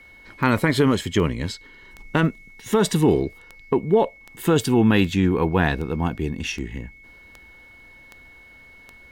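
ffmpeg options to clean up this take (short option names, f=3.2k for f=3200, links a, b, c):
-af "adeclick=t=4,bandreject=f=2.2k:w=30"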